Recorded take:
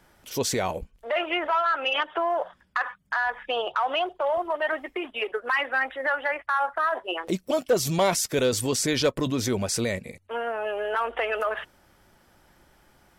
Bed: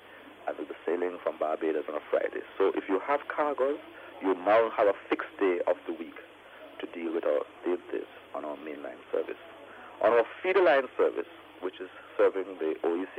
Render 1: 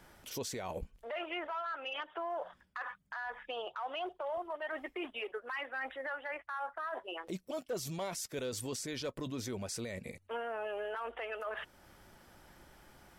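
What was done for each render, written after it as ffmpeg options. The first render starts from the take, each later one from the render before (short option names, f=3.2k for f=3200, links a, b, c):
-af "areverse,acompressor=threshold=-32dB:ratio=6,areverse,alimiter=level_in=6.5dB:limit=-24dB:level=0:latency=1:release=295,volume=-6.5dB"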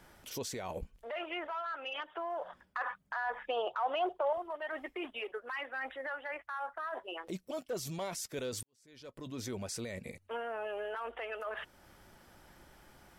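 -filter_complex "[0:a]asettb=1/sr,asplit=3[a][b][c];[a]atrim=end=2.484[d];[b]atrim=start=2.48:end=4.33,asetpts=PTS-STARTPTS,afade=t=in:d=0.004:c=qsin,afade=t=out:st=1.846:d=0.004:c=qsin,equalizer=f=630:w=0.47:g=7.5[e];[c]atrim=start=4.326[f];[d][e]acrossfade=d=0.004:c1=hsin:c2=qsin[g];[g][f]acrossfade=d=0.004:c1=qsin:c2=hsin,asplit=2[h][i];[h]atrim=end=8.63,asetpts=PTS-STARTPTS,afade=t=out:st=8.626:d=0.004:c=hsin[j];[i]atrim=start=8.63,asetpts=PTS-STARTPTS,afade=t=in:d=0.82:c=qua[k];[j][k]concat=n=2:v=0:a=1"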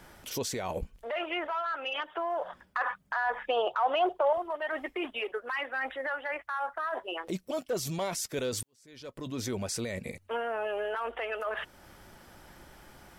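-af "volume=6dB"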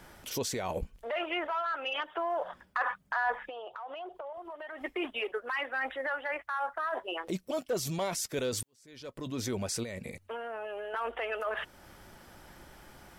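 -filter_complex "[0:a]asettb=1/sr,asplit=3[a][b][c];[a]atrim=end=3.344[d];[b]atrim=start=3.34:end=4.81,asetpts=PTS-STARTPTS,afade=t=in:d=0.004:c=qsin,afade=t=out:st=1.466:d=0.004:c=qsin,acompressor=threshold=-39dB:ratio=8:attack=3.2:release=140:knee=1:detection=peak[e];[c]atrim=start=4.806[f];[d][e]acrossfade=d=0.004:c1=hsin:c2=qsin[g];[g][f]acrossfade=d=0.004:c1=qsin:c2=hsin,asettb=1/sr,asplit=3[h][i][j];[h]atrim=end=9.834[k];[i]atrim=start=9.83:end=10.94,asetpts=PTS-STARTPTS,afade=t=in:d=0.004:c=qsin,afade=t=out:st=1.106:d=0.004:c=qsin,acompressor=threshold=-35dB:ratio=6:attack=3.2:release=140:knee=1:detection=peak[l];[j]atrim=start=10.936[m];[k][l]acrossfade=d=0.004:c1=hsin:c2=qsin[n];[n][m]acrossfade=d=0.004:c1=qsin:c2=hsin"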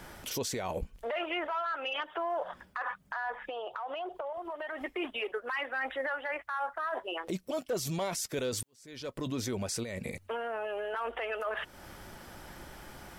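-filter_complex "[0:a]asplit=2[a][b];[b]acompressor=threshold=-40dB:ratio=6,volume=-2.5dB[c];[a][c]amix=inputs=2:normalize=0,alimiter=level_in=1.5dB:limit=-24dB:level=0:latency=1:release=214,volume=-1.5dB"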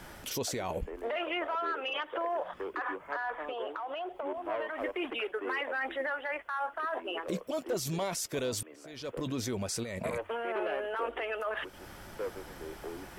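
-filter_complex "[1:a]volume=-13.5dB[a];[0:a][a]amix=inputs=2:normalize=0"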